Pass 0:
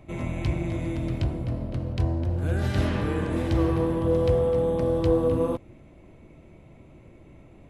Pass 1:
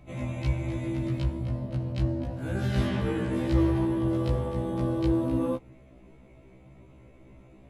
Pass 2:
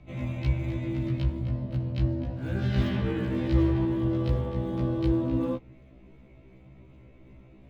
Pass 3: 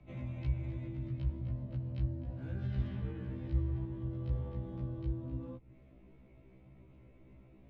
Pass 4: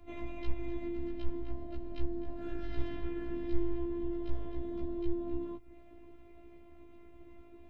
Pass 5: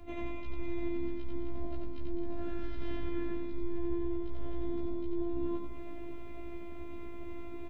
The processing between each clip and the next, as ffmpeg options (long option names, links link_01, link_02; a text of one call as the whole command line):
ffmpeg -i in.wav -af "afftfilt=real='re*1.73*eq(mod(b,3),0)':imag='im*1.73*eq(mod(b,3),0)':win_size=2048:overlap=0.75" out.wav
ffmpeg -i in.wav -filter_complex "[0:a]equalizer=frequency=810:width=0.59:gain=-5,acrossover=split=350|5400[link_01][link_02][link_03];[link_03]acrusher=samples=21:mix=1:aa=0.000001:lfo=1:lforange=33.6:lforate=2.7[link_04];[link_01][link_02][link_04]amix=inputs=3:normalize=0,volume=1.5dB" out.wav
ffmpeg -i in.wav -filter_complex "[0:a]aemphasis=mode=reproduction:type=50fm,acrossover=split=140[link_01][link_02];[link_02]acompressor=threshold=-38dB:ratio=6[link_03];[link_01][link_03]amix=inputs=2:normalize=0,volume=-7dB" out.wav
ffmpeg -i in.wav -af "afftfilt=real='hypot(re,im)*cos(PI*b)':imag='0':win_size=512:overlap=0.75,volume=9.5dB" out.wav
ffmpeg -i in.wav -af "areverse,acompressor=threshold=-43dB:ratio=4,areverse,aecho=1:1:90|207|359.1|556.8|813.9:0.631|0.398|0.251|0.158|0.1,volume=8dB" out.wav